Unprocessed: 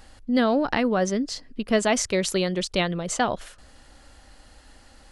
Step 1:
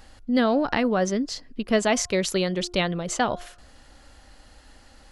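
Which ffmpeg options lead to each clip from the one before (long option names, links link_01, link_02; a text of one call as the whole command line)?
ffmpeg -i in.wav -af "equalizer=frequency=8800:width_type=o:width=0.24:gain=-5,bandreject=frequency=354:width_type=h:width=4,bandreject=frequency=708:width_type=h:width=4,bandreject=frequency=1062:width_type=h:width=4,bandreject=frequency=1416:width_type=h:width=4" out.wav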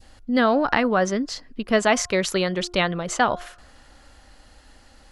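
ffmpeg -i in.wav -af "adynamicequalizer=threshold=0.0126:dfrequency=1300:dqfactor=0.78:tfrequency=1300:tqfactor=0.78:attack=5:release=100:ratio=0.375:range=3.5:mode=boostabove:tftype=bell" out.wav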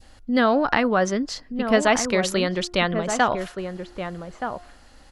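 ffmpeg -i in.wav -filter_complex "[0:a]asplit=2[link_01][link_02];[link_02]adelay=1224,volume=-7dB,highshelf=frequency=4000:gain=-27.6[link_03];[link_01][link_03]amix=inputs=2:normalize=0" out.wav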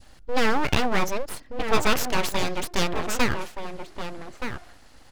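ffmpeg -i in.wav -af "aeval=exprs='abs(val(0))':channel_layout=same" out.wav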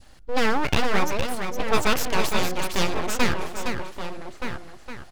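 ffmpeg -i in.wav -af "aecho=1:1:462:0.473" out.wav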